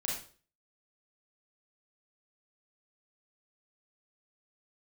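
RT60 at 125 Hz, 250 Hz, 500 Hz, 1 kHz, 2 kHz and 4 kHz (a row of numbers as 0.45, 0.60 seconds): 0.50, 0.45, 0.45, 0.40, 0.35, 0.40 seconds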